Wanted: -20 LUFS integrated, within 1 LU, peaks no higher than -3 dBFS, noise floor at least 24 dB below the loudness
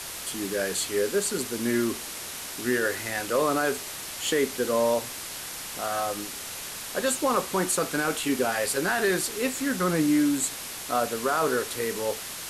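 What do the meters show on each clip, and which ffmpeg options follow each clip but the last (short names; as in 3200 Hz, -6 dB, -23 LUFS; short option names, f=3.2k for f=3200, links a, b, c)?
noise floor -37 dBFS; noise floor target -51 dBFS; loudness -27.0 LUFS; peak -13.0 dBFS; loudness target -20.0 LUFS
-> -af "afftdn=nr=14:nf=-37"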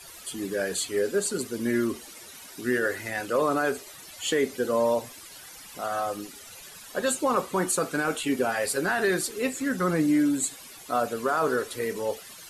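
noise floor -46 dBFS; noise floor target -51 dBFS
-> -af "afftdn=nr=6:nf=-46"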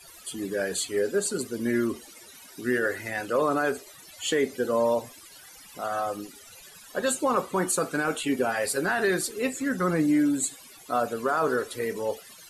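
noise floor -49 dBFS; noise floor target -51 dBFS
-> -af "afftdn=nr=6:nf=-49"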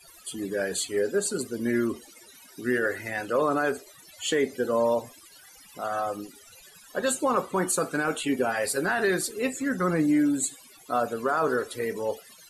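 noise floor -52 dBFS; loudness -27.0 LUFS; peak -14.0 dBFS; loudness target -20.0 LUFS
-> -af "volume=7dB"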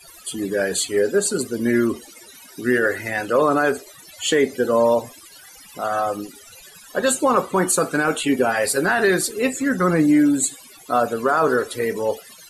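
loudness -20.0 LUFS; peak -7.0 dBFS; noise floor -45 dBFS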